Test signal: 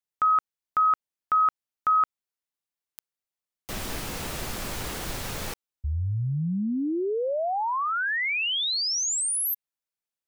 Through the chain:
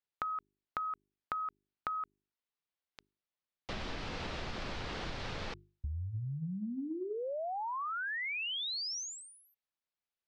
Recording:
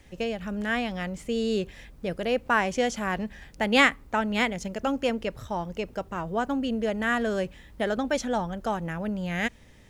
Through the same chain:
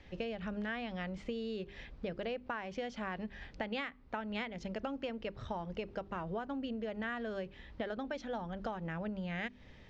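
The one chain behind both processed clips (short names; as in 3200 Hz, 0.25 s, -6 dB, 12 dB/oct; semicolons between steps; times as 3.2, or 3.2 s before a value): LPF 4700 Hz 24 dB/oct; notches 50/100/150/200/250/300/350/400 Hz; compressor 16:1, threshold -34 dBFS; gain -1.5 dB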